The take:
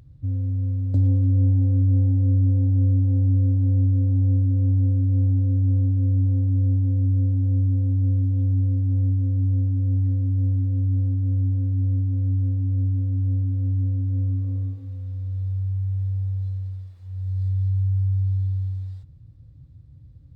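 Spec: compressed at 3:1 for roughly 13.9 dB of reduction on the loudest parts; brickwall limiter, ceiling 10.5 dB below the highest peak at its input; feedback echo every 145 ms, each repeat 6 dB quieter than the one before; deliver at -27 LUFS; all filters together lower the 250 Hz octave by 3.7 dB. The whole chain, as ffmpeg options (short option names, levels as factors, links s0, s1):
-af "equalizer=f=250:t=o:g=-4,acompressor=threshold=0.0141:ratio=3,alimiter=level_in=3.98:limit=0.0631:level=0:latency=1,volume=0.251,aecho=1:1:145|290|435|580|725|870:0.501|0.251|0.125|0.0626|0.0313|0.0157,volume=2.99"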